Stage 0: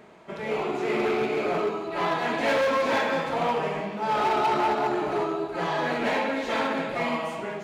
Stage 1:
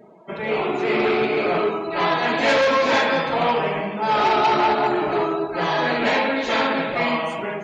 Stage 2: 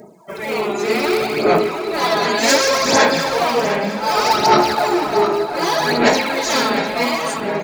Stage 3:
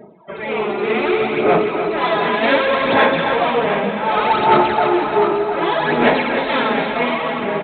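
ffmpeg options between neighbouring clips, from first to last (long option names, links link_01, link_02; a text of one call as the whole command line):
ffmpeg -i in.wav -af "afftdn=noise_reduction=24:noise_floor=-48,highshelf=frequency=3300:gain=8,volume=5dB" out.wav
ffmpeg -i in.wav -filter_complex "[0:a]aphaser=in_gain=1:out_gain=1:delay=5:decay=0.6:speed=0.66:type=sinusoidal,asplit=2[link_01][link_02];[link_02]adelay=706,lowpass=frequency=4200:poles=1,volume=-9.5dB,asplit=2[link_03][link_04];[link_04]adelay=706,lowpass=frequency=4200:poles=1,volume=0.49,asplit=2[link_05][link_06];[link_06]adelay=706,lowpass=frequency=4200:poles=1,volume=0.49,asplit=2[link_07][link_08];[link_08]adelay=706,lowpass=frequency=4200:poles=1,volume=0.49,asplit=2[link_09][link_10];[link_10]adelay=706,lowpass=frequency=4200:poles=1,volume=0.49[link_11];[link_01][link_03][link_05][link_07][link_09][link_11]amix=inputs=6:normalize=0,aexciter=amount=9:drive=3.1:freq=4600" out.wav
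ffmpeg -i in.wav -filter_complex "[0:a]asplit=2[link_01][link_02];[link_02]aecho=0:1:298:0.355[link_03];[link_01][link_03]amix=inputs=2:normalize=0,aresample=8000,aresample=44100" out.wav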